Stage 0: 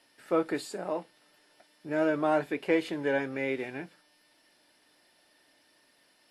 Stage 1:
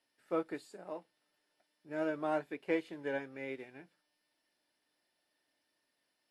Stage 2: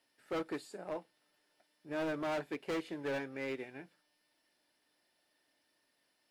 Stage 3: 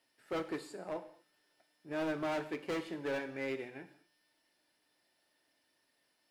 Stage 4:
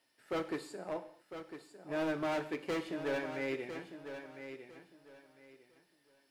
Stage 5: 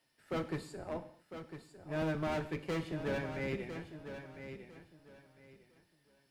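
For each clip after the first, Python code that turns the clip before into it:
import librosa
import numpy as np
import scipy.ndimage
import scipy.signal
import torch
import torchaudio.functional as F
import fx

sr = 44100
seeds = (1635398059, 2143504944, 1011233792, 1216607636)

y1 = fx.upward_expand(x, sr, threshold_db=-41.0, expansion=1.5)
y1 = y1 * librosa.db_to_amplitude(-6.5)
y2 = np.clip(y1, -10.0 ** (-37.0 / 20.0), 10.0 ** (-37.0 / 20.0))
y2 = y2 * librosa.db_to_amplitude(4.0)
y3 = fx.rev_gated(y2, sr, seeds[0], gate_ms=260, shape='falling', drr_db=9.0)
y4 = fx.echo_feedback(y3, sr, ms=1003, feedback_pct=24, wet_db=-10.0)
y4 = y4 * librosa.db_to_amplitude(1.0)
y5 = fx.octave_divider(y4, sr, octaves=1, level_db=2.0)
y5 = y5 * librosa.db_to_amplitude(-1.5)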